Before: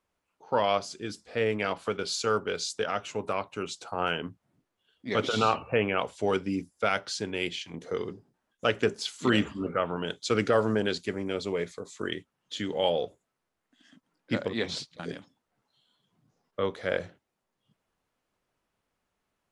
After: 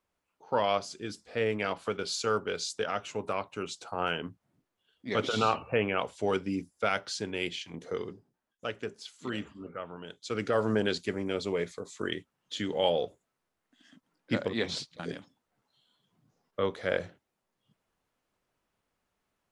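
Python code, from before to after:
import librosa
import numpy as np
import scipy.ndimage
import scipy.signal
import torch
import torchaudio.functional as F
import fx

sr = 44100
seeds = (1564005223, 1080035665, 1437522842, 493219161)

y = fx.gain(x, sr, db=fx.line((7.89, -2.0), (8.85, -11.5), (10.1, -11.5), (10.75, -0.5)))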